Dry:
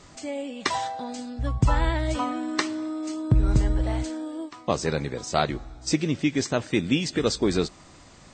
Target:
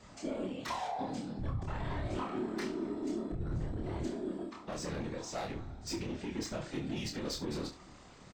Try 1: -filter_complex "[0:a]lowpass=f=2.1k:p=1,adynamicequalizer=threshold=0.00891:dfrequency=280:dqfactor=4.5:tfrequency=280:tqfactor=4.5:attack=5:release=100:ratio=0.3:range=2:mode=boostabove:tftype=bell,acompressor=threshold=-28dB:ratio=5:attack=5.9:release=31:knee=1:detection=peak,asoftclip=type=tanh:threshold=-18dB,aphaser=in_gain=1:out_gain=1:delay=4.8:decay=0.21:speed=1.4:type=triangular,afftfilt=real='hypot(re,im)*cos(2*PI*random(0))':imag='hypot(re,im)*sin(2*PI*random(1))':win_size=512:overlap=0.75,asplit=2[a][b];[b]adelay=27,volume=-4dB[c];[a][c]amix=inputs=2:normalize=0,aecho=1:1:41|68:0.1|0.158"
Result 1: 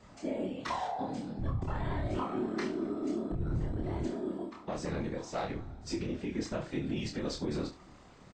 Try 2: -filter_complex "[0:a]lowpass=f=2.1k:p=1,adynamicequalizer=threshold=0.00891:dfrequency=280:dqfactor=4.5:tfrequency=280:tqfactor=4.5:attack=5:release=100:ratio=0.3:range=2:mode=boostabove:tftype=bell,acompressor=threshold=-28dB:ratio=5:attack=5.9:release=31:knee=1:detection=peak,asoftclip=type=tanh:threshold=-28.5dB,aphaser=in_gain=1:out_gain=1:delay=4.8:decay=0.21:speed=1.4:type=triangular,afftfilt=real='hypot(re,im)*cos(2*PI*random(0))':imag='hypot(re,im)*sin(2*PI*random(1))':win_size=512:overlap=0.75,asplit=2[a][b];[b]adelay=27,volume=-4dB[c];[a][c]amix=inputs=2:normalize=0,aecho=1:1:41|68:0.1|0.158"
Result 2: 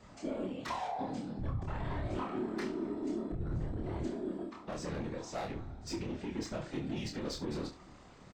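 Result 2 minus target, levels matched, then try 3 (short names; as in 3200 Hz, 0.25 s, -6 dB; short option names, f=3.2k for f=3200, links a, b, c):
4000 Hz band -3.0 dB
-filter_complex "[0:a]lowpass=f=4.4k:p=1,adynamicequalizer=threshold=0.00891:dfrequency=280:dqfactor=4.5:tfrequency=280:tqfactor=4.5:attack=5:release=100:ratio=0.3:range=2:mode=boostabove:tftype=bell,acompressor=threshold=-28dB:ratio=5:attack=5.9:release=31:knee=1:detection=peak,asoftclip=type=tanh:threshold=-28.5dB,aphaser=in_gain=1:out_gain=1:delay=4.8:decay=0.21:speed=1.4:type=triangular,afftfilt=real='hypot(re,im)*cos(2*PI*random(0))':imag='hypot(re,im)*sin(2*PI*random(1))':win_size=512:overlap=0.75,asplit=2[a][b];[b]adelay=27,volume=-4dB[c];[a][c]amix=inputs=2:normalize=0,aecho=1:1:41|68:0.1|0.158"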